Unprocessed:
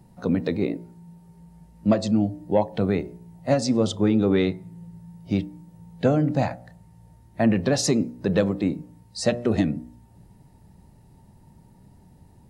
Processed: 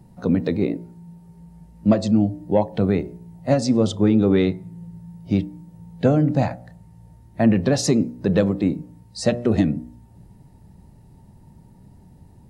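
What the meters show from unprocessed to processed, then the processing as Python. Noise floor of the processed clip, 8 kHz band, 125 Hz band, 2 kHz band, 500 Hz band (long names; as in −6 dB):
−49 dBFS, 0.0 dB, +4.0 dB, +0.5 dB, +2.0 dB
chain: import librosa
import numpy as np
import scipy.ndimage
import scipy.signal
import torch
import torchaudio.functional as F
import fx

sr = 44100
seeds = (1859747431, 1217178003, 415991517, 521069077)

y = fx.low_shelf(x, sr, hz=460.0, db=4.5)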